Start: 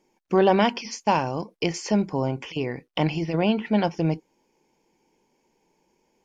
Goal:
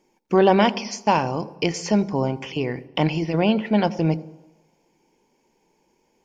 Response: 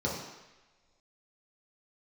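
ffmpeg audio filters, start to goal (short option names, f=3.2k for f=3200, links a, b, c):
-filter_complex "[0:a]asplit=2[a][b];[1:a]atrim=start_sample=2205,adelay=80[c];[b][c]afir=irnorm=-1:irlink=0,volume=-27dB[d];[a][d]amix=inputs=2:normalize=0,volume=2.5dB"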